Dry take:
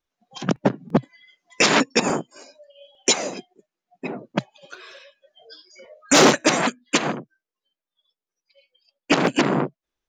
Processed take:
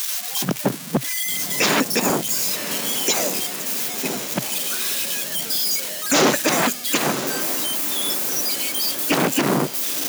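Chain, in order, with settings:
spike at every zero crossing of −17 dBFS
on a send: feedback delay with all-pass diffusion 1,052 ms, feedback 61%, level −14.5 dB
on the sum: brickwall limiter −11.5 dBFS, peak gain reduction 7 dB
level +2.5 dB

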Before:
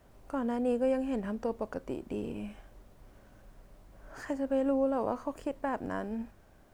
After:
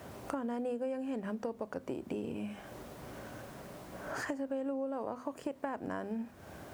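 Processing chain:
high-pass filter 76 Hz 24 dB per octave
mains-hum notches 50/100/150/200/250 Hz
downward compressor 5 to 1, threshold −51 dBFS, peak gain reduction 23 dB
level +14 dB

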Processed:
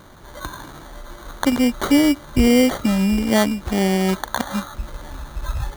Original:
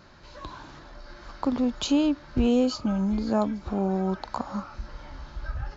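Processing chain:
sample-rate reduction 2,600 Hz, jitter 0%
level +7.5 dB

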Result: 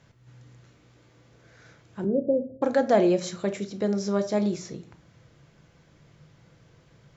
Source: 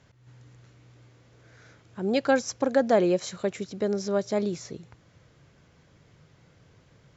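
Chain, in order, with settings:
0:02.04–0:02.62: Butterworth low-pass 630 Hz 72 dB per octave
convolution reverb RT60 0.40 s, pre-delay 6 ms, DRR 8 dB

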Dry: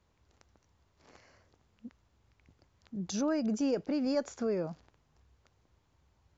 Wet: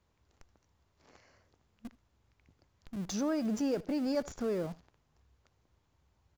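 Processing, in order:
in parallel at −8 dB: comparator with hysteresis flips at −41.5 dBFS
on the sum: single-tap delay 77 ms −22 dB
level −2.5 dB

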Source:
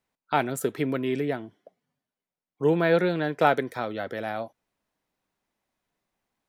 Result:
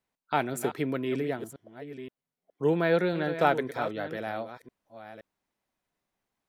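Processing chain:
delay that plays each chunk backwards 521 ms, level −11 dB
level −3 dB

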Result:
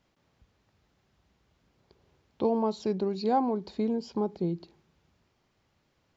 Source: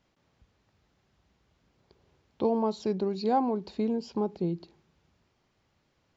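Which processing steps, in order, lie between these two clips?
0:03.31–0:04.55: notch filter 2,700 Hz, Q 11

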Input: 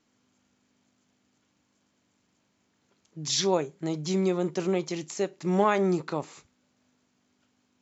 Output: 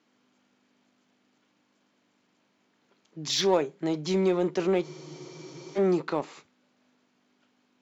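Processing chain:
band-pass filter 210–4,500 Hz
in parallel at −5.5 dB: gain into a clipping stage and back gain 26 dB
on the sum: frozen spectrum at 0:04.85, 0.93 s

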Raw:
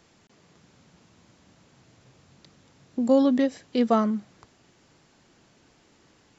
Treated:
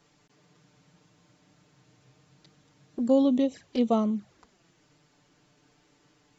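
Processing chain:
flanger swept by the level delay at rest 7.1 ms, full sweep at −20.5 dBFS
level −1.5 dB

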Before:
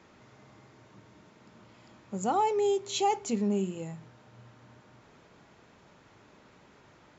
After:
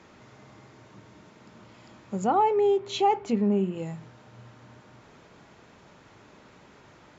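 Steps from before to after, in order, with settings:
treble cut that deepens with the level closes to 2,300 Hz, closed at −27.5 dBFS
level +4.5 dB

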